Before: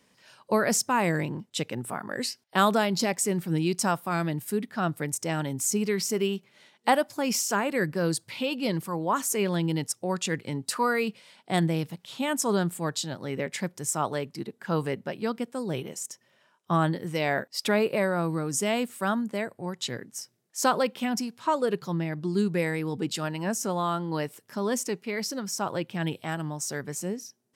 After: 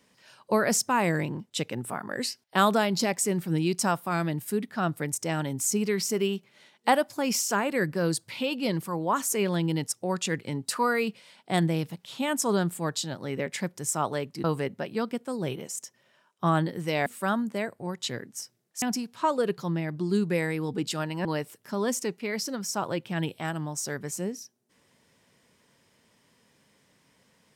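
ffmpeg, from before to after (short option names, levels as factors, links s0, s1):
-filter_complex "[0:a]asplit=5[s0][s1][s2][s3][s4];[s0]atrim=end=14.442[s5];[s1]atrim=start=14.708:end=17.332[s6];[s2]atrim=start=18.848:end=20.612[s7];[s3]atrim=start=21.058:end=23.492[s8];[s4]atrim=start=24.088[s9];[s5][s6]acrossfade=d=0.004:c1=hsin:c2=hsin[s10];[s10][s7]acrossfade=d=0.004:c1=hsin:c2=hsin[s11];[s11][s8]acrossfade=d=0.004:c1=hsin:c2=hsin[s12];[s12][s9]acrossfade=d=0.004:c1=hsin:c2=hsin"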